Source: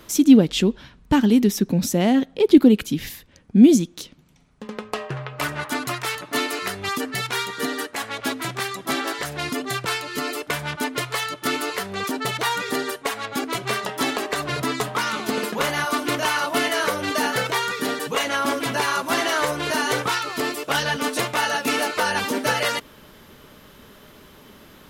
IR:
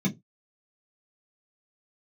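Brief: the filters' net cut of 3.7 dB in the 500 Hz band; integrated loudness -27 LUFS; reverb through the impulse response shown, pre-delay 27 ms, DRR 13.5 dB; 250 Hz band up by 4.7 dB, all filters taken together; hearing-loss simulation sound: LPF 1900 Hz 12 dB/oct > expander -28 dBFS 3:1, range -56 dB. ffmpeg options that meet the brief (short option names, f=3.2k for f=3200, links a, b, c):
-filter_complex "[0:a]equalizer=f=250:t=o:g=7.5,equalizer=f=500:t=o:g=-8.5,asplit=2[a][b];[1:a]atrim=start_sample=2205,adelay=27[c];[b][c]afir=irnorm=-1:irlink=0,volume=-20dB[d];[a][d]amix=inputs=2:normalize=0,lowpass=1.9k,agate=range=-56dB:threshold=-28dB:ratio=3,volume=-13dB"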